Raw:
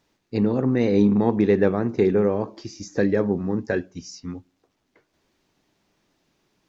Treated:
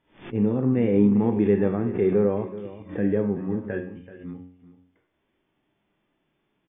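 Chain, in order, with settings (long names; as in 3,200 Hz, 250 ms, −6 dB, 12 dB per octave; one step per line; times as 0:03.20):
hum removal 90.31 Hz, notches 34
harmonic and percussive parts rebalanced percussive −12 dB
linear-phase brick-wall low-pass 3,600 Hz
single-tap delay 381 ms −15 dB
background raised ahead of every attack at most 150 dB per second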